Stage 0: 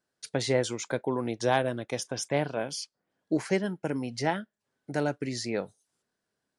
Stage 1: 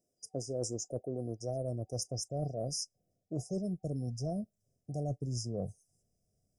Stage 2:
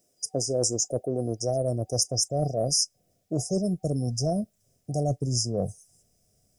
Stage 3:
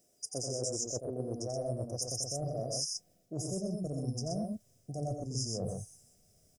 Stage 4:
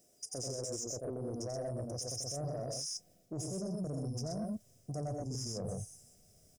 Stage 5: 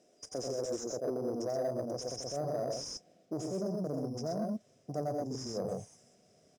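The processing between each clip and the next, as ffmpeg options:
-af "afftfilt=real='re*(1-between(b*sr/4096,760,4900))':imag='im*(1-between(b*sr/4096,760,4900))':win_size=4096:overlap=0.75,asubboost=boost=11.5:cutoff=91,areverse,acompressor=threshold=0.0158:ratio=8,areverse,volume=1.41"
-filter_complex "[0:a]tiltshelf=f=820:g=-4,asplit=2[s0][s1];[s1]alimiter=level_in=1.78:limit=0.0631:level=0:latency=1:release=254,volume=0.562,volume=0.841[s2];[s0][s2]amix=inputs=2:normalize=0,volume=2.24"
-af "areverse,acompressor=threshold=0.02:ratio=6,areverse,aecho=1:1:87.46|125.4:0.501|0.631,volume=0.891"
-af "alimiter=level_in=2.51:limit=0.0631:level=0:latency=1:release=36,volume=0.398,asoftclip=type=tanh:threshold=0.0224,volume=1.33"
-filter_complex "[0:a]highpass=230,lowpass=4200,asplit=2[s0][s1];[s1]acrusher=samples=8:mix=1:aa=0.000001,volume=0.251[s2];[s0][s2]amix=inputs=2:normalize=0,volume=1.68"

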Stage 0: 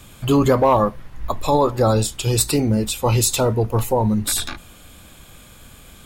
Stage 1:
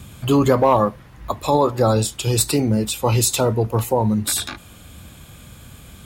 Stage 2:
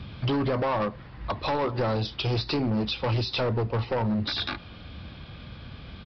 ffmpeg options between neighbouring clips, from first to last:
-filter_complex "[0:a]acrossover=split=190|8000[s0][s1][s2];[s0]acompressor=mode=upward:threshold=0.0398:ratio=2.5[s3];[s3][s1][s2]amix=inputs=3:normalize=0,highpass=63"
-af "acompressor=threshold=0.112:ratio=6,aresample=11025,asoftclip=type=hard:threshold=0.075,aresample=44100"

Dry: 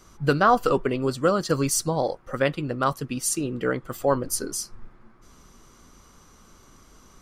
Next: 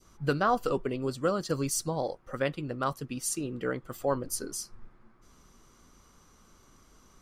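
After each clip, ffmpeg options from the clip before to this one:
-af "adynamicequalizer=threshold=0.0158:dfrequency=1400:dqfactor=0.85:tfrequency=1400:tqfactor=0.85:attack=5:release=100:ratio=0.375:range=3:mode=cutabove:tftype=bell,volume=0.473"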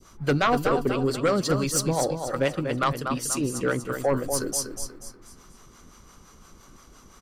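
-filter_complex "[0:a]acrossover=split=500[s0][s1];[s0]aeval=exprs='val(0)*(1-0.7/2+0.7/2*cos(2*PI*5.8*n/s))':c=same[s2];[s1]aeval=exprs='val(0)*(1-0.7/2-0.7/2*cos(2*PI*5.8*n/s))':c=same[s3];[s2][s3]amix=inputs=2:normalize=0,aecho=1:1:241|482|723|964:0.398|0.151|0.0575|0.0218,aeval=exprs='0.211*sin(PI/2*2.51*val(0)/0.211)':c=same,volume=0.841"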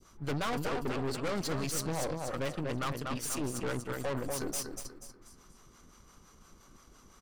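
-af "aeval=exprs='(tanh(28.2*val(0)+0.8)-tanh(0.8))/28.2':c=same,volume=0.794"

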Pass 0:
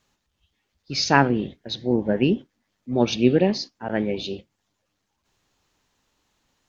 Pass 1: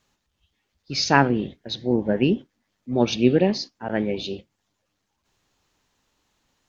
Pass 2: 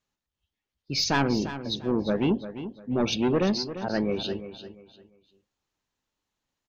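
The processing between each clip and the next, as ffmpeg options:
-af anull
-af "aeval=exprs='(tanh(7.94*val(0)+0.1)-tanh(0.1))/7.94':c=same,afftdn=nr=14:nf=-42,aecho=1:1:347|694|1041:0.251|0.0703|0.0197"

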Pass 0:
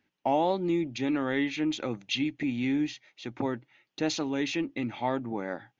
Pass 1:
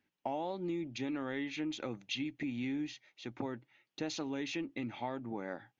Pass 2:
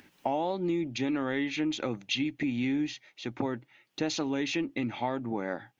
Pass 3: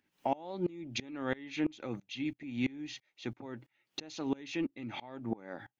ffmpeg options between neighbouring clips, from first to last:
-af "acompressor=threshold=0.0398:ratio=6,volume=0.531"
-af "acompressor=mode=upward:threshold=0.00224:ratio=2.5,volume=2.37"
-af "aeval=exprs='val(0)*pow(10,-26*if(lt(mod(-3*n/s,1),2*abs(-3)/1000),1-mod(-3*n/s,1)/(2*abs(-3)/1000),(mod(-3*n/s,1)-2*abs(-3)/1000)/(1-2*abs(-3)/1000))/20)':c=same,volume=1.26"

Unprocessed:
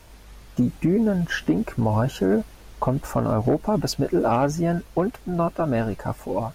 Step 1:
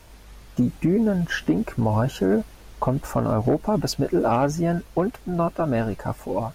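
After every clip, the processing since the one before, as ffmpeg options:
-af anull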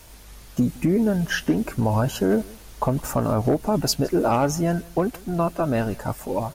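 -af "highshelf=f=5000:g=10,aecho=1:1:164:0.0668"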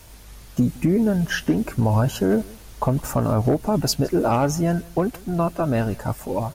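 -af "equalizer=f=97:w=0.81:g=4"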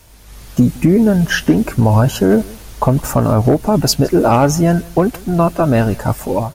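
-af "dynaudnorm=f=130:g=5:m=3.76"

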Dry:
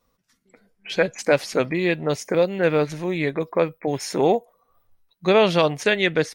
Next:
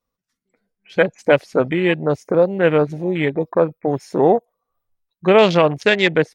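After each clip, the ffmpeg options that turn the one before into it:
-af "afwtdn=0.0355,volume=1.68"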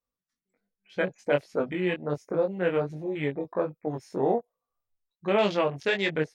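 -af "flanger=delay=19.5:depth=2.6:speed=1.3,volume=0.398"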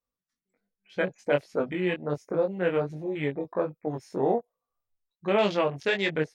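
-af anull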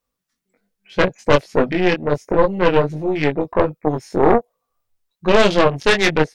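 -af "aeval=exprs='0.266*(cos(1*acos(clip(val(0)/0.266,-1,1)))-cos(1*PI/2))+0.106*(cos(4*acos(clip(val(0)/0.266,-1,1)))-cos(4*PI/2))+0.0335*(cos(5*acos(clip(val(0)/0.266,-1,1)))-cos(5*PI/2))':c=same,volume=2.24"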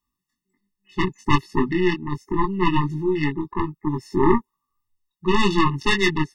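-af "tremolo=f=0.7:d=0.34,afftfilt=real='re*eq(mod(floor(b*sr/1024/430),2),0)':imag='im*eq(mod(floor(b*sr/1024/430),2),0)':win_size=1024:overlap=0.75"

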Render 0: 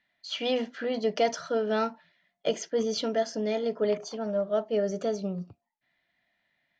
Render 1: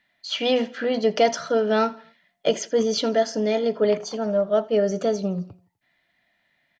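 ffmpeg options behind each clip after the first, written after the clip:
-af "aecho=1:1:83|166|249:0.0841|0.0379|0.017,volume=2.11"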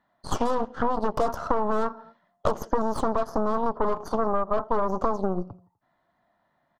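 -af "aeval=exprs='0.398*(cos(1*acos(clip(val(0)/0.398,-1,1)))-cos(1*PI/2))+0.126*(cos(8*acos(clip(val(0)/0.398,-1,1)))-cos(8*PI/2))':c=same,highshelf=f=1600:t=q:w=3:g=-12,acompressor=threshold=0.0794:ratio=12,volume=1.33"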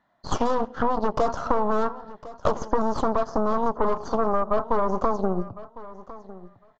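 -filter_complex "[0:a]asplit=2[s0][s1];[s1]asoftclip=type=tanh:threshold=0.15,volume=0.282[s2];[s0][s2]amix=inputs=2:normalize=0,aecho=1:1:1055|2110:0.133|0.02,aresample=16000,aresample=44100"

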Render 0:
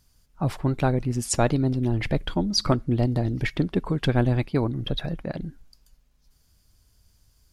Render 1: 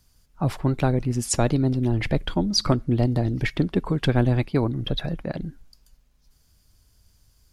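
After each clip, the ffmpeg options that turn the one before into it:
-filter_complex "[0:a]acrossover=split=450|3000[s0][s1][s2];[s1]acompressor=threshold=0.0631:ratio=6[s3];[s0][s3][s2]amix=inputs=3:normalize=0,volume=1.19"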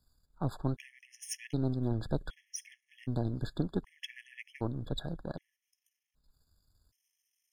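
-af "aeval=exprs='if(lt(val(0),0),0.447*val(0),val(0))':c=same,afftfilt=real='re*gt(sin(2*PI*0.65*pts/sr)*(1-2*mod(floor(b*sr/1024/1700),2)),0)':imag='im*gt(sin(2*PI*0.65*pts/sr)*(1-2*mod(floor(b*sr/1024/1700),2)),0)':win_size=1024:overlap=0.75,volume=0.398"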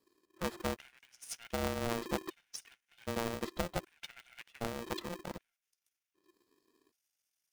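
-af "aeval=exprs='val(0)*sgn(sin(2*PI*350*n/s))':c=same,volume=0.631"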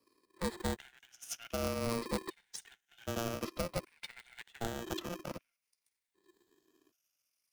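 -filter_complex "[0:a]afftfilt=real='re*pow(10,7/40*sin(2*PI*(0.93*log(max(b,1)*sr/1024/100)/log(2)-(-0.54)*(pts-256)/sr)))':imag='im*pow(10,7/40*sin(2*PI*(0.93*log(max(b,1)*sr/1024/100)/log(2)-(-0.54)*(pts-256)/sr)))':win_size=1024:overlap=0.75,acrossover=split=220|2800[s0][s1][s2];[s1]asoftclip=type=tanh:threshold=0.0355[s3];[s0][s3][s2]amix=inputs=3:normalize=0,volume=1.12"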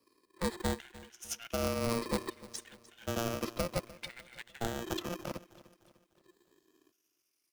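-af "aecho=1:1:300|600|900|1200:0.112|0.0505|0.0227|0.0102,volume=1.33"

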